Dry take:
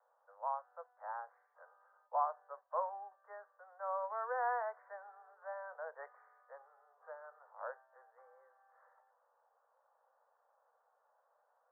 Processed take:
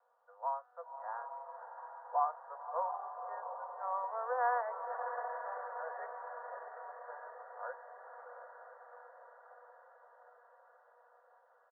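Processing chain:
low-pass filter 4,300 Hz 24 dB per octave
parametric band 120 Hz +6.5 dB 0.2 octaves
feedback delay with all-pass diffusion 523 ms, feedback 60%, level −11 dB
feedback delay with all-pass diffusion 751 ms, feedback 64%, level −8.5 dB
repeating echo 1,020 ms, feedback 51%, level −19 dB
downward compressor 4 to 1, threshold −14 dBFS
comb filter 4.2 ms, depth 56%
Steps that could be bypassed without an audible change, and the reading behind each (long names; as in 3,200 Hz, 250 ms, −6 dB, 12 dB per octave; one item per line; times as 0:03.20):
low-pass filter 4,300 Hz: nothing at its input above 2,000 Hz
parametric band 120 Hz: nothing at its input below 400 Hz
downward compressor, threshold −14 dBFS: peak of its input −21.5 dBFS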